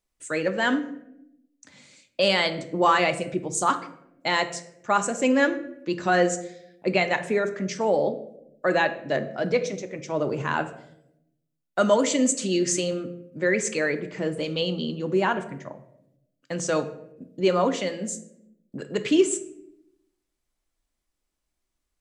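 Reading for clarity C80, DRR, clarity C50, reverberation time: 15.5 dB, 8.0 dB, 12.5 dB, 0.80 s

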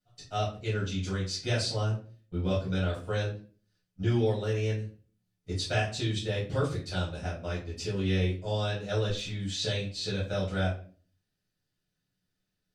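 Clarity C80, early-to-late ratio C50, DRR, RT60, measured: 13.0 dB, 6.5 dB, −9.5 dB, 0.45 s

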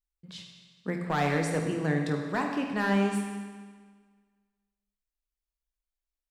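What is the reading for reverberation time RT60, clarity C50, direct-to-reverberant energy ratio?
1.6 s, 4.0 dB, 1.5 dB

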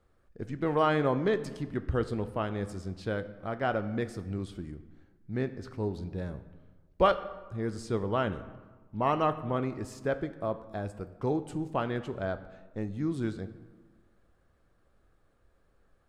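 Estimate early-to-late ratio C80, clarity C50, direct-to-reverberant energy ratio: 15.0 dB, 13.5 dB, 10.0 dB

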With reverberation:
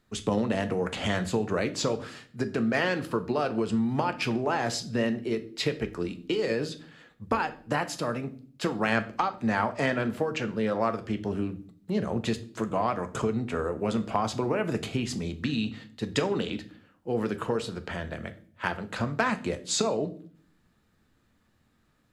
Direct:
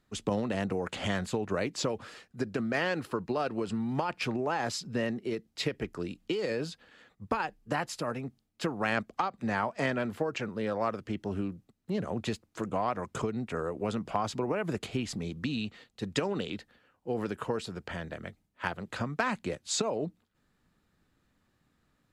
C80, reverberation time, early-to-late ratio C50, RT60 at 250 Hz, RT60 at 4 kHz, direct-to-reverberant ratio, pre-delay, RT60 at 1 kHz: 20.0 dB, 0.50 s, 15.5 dB, 0.80 s, 0.45 s, 9.0 dB, 5 ms, 0.40 s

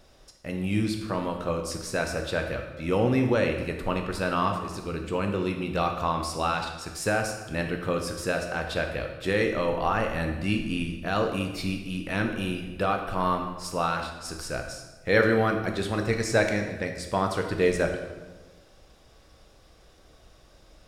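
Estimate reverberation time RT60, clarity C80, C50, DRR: 1.3 s, 8.0 dB, 6.5 dB, 3.5 dB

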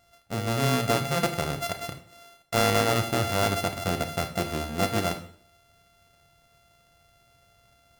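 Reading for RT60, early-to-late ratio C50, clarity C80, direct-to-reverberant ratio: 0.55 s, 11.0 dB, 15.0 dB, 6.5 dB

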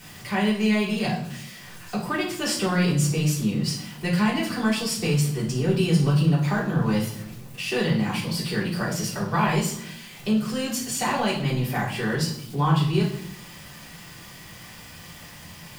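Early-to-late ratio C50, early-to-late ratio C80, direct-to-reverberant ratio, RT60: 6.0 dB, 10.5 dB, −7.0 dB, 0.65 s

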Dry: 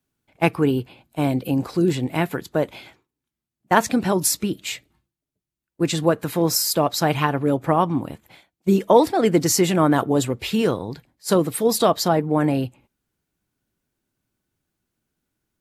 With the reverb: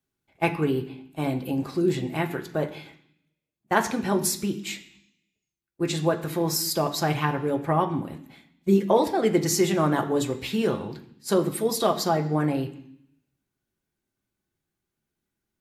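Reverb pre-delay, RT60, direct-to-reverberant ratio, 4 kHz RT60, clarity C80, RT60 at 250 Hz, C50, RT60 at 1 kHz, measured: 3 ms, 0.65 s, 2.5 dB, 0.80 s, 15.0 dB, 0.95 s, 12.5 dB, 0.65 s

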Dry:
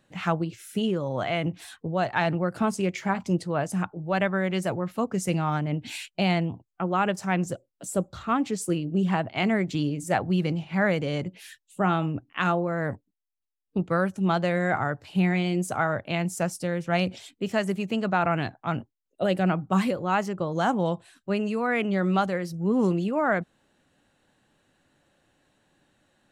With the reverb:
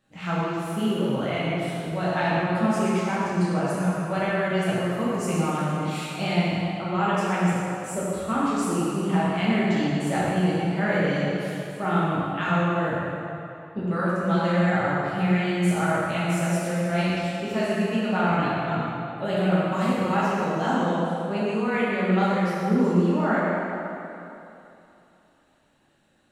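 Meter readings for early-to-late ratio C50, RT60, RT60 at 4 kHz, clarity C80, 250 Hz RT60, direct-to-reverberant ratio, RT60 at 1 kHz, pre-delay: −4.5 dB, 2.9 s, 2.2 s, −2.5 dB, 2.6 s, −9.0 dB, 3.0 s, 5 ms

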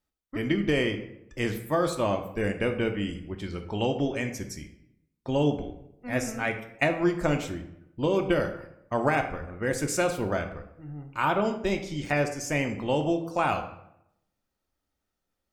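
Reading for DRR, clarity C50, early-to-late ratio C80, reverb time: 5.0 dB, 9.5 dB, 12.5 dB, 0.80 s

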